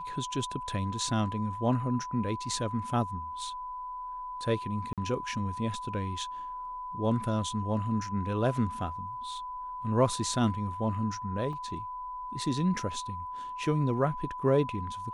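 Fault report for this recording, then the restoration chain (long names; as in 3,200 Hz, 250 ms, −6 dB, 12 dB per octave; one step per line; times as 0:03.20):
whistle 1,000 Hz −36 dBFS
0:04.93–0:04.98: drop-out 47 ms
0:11.53: drop-out 2.1 ms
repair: notch filter 1,000 Hz, Q 30
repair the gap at 0:04.93, 47 ms
repair the gap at 0:11.53, 2.1 ms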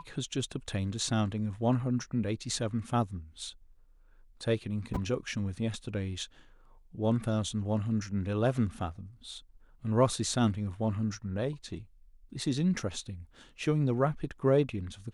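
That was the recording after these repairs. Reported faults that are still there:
none of them is left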